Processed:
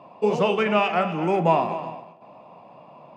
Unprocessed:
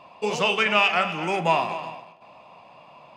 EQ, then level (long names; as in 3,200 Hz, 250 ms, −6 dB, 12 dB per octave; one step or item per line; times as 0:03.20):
high-pass filter 140 Hz
tilt shelving filter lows +9.5 dB, about 1,200 Hz
−1.5 dB